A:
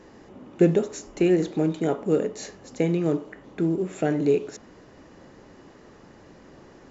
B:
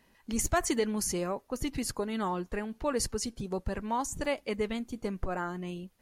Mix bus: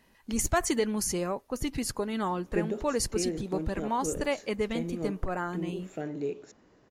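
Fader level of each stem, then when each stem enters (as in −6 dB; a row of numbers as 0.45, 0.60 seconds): −12.0, +1.5 decibels; 1.95, 0.00 seconds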